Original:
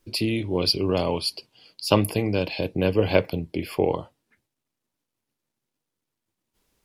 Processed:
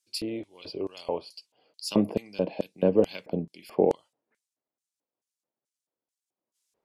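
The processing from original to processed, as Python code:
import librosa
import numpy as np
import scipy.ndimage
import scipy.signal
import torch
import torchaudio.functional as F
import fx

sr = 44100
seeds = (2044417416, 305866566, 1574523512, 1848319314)

y = fx.peak_eq(x, sr, hz=200.0, db=14.5, octaves=1.2, at=(1.84, 3.95))
y = fx.filter_lfo_bandpass(y, sr, shape='square', hz=2.3, low_hz=600.0, high_hz=7400.0, q=1.5)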